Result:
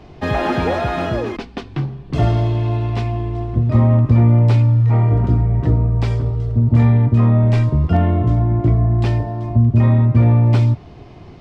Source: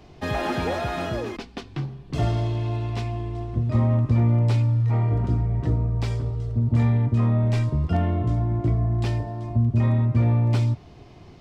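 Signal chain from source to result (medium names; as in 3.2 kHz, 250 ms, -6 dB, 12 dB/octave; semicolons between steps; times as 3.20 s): treble shelf 5.1 kHz -11.5 dB; trim +7.5 dB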